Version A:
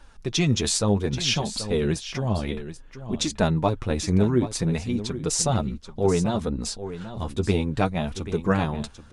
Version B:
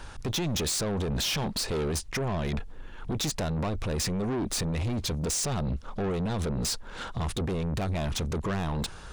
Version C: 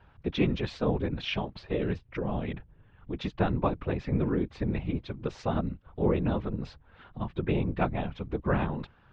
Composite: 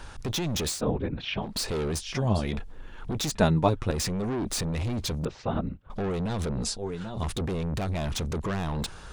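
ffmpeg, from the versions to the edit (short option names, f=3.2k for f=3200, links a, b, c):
-filter_complex "[2:a]asplit=2[a][b];[0:a]asplit=3[c][d][e];[1:a]asplit=6[f][g][h][i][j][k];[f]atrim=end=0.84[l];[a]atrim=start=0.68:end=1.57[m];[g]atrim=start=1.41:end=2.14[n];[c]atrim=start=1.9:end=2.63[o];[h]atrim=start=2.39:end=3.352[p];[d]atrim=start=3.348:end=3.912[q];[i]atrim=start=3.908:end=5.252[r];[b]atrim=start=5.248:end=5.902[s];[j]atrim=start=5.898:end=6.632[t];[e]atrim=start=6.628:end=7.232[u];[k]atrim=start=7.228[v];[l][m]acrossfade=d=0.16:c1=tri:c2=tri[w];[w][n]acrossfade=d=0.16:c1=tri:c2=tri[x];[x][o]acrossfade=d=0.24:c1=tri:c2=tri[y];[y][p]acrossfade=d=0.24:c1=tri:c2=tri[z];[z][q]acrossfade=d=0.004:c1=hsin:c2=hsin[aa];[aa][r]acrossfade=d=0.004:c1=hsin:c2=hsin[ab];[ab][s]acrossfade=d=0.004:c1=hsin:c2=hsin[ac];[ac][t]acrossfade=d=0.004:c1=hsin:c2=hsin[ad];[ad][u]acrossfade=d=0.004:c1=hsin:c2=hsin[ae];[ae][v]acrossfade=d=0.004:c1=hsin:c2=hsin"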